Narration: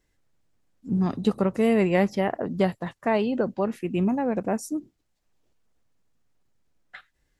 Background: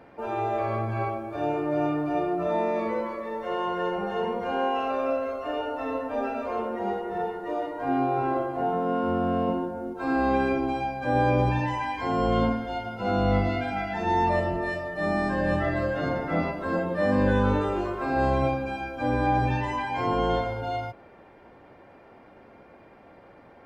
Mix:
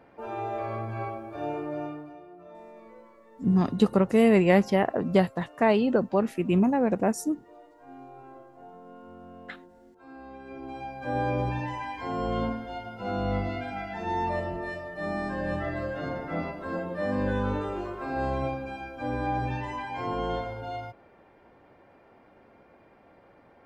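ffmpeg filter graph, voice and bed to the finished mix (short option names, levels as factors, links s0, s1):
-filter_complex "[0:a]adelay=2550,volume=1.19[s0];[1:a]volume=3.55,afade=t=out:st=1.58:d=0.59:silence=0.149624,afade=t=in:st=10.44:d=0.63:silence=0.158489[s1];[s0][s1]amix=inputs=2:normalize=0"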